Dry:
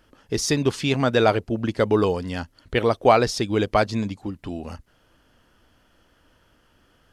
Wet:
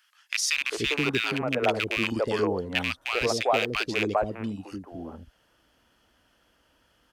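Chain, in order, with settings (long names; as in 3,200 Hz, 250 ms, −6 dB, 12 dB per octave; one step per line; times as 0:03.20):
loose part that buzzes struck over −23 dBFS, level −11 dBFS
high-pass filter 46 Hz
parametric band 110 Hz −8 dB 2.1 octaves
speech leveller within 4 dB 0.5 s
three-band delay without the direct sound highs, mids, lows 400/480 ms, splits 420/1,300 Hz
level −2 dB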